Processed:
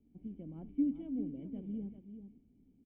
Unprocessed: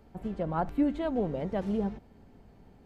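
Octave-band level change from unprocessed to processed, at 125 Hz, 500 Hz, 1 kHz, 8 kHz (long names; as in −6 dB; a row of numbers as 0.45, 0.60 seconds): −11.5 dB, −20.5 dB, below −30 dB, can't be measured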